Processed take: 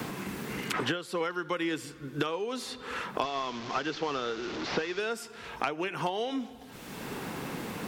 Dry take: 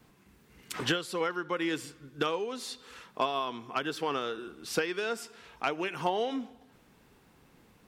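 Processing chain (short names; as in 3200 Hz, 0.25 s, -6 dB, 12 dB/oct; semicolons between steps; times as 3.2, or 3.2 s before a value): 3.23–5 delta modulation 32 kbps, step -38.5 dBFS; three-band squash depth 100%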